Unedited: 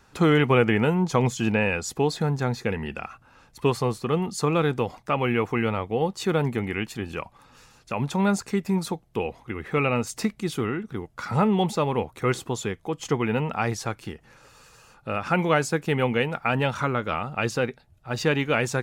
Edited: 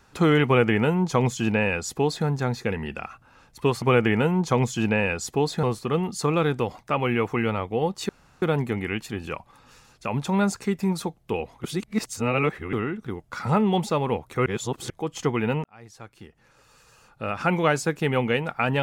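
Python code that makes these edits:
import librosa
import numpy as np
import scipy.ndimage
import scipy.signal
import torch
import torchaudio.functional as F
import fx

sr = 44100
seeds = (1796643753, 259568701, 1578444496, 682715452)

y = fx.edit(x, sr, fx.duplicate(start_s=0.45, length_s=1.81, to_s=3.82),
    fx.insert_room_tone(at_s=6.28, length_s=0.33),
    fx.reverse_span(start_s=9.5, length_s=1.09),
    fx.reverse_span(start_s=12.32, length_s=0.44),
    fx.fade_in_span(start_s=13.5, length_s=1.8), tone=tone)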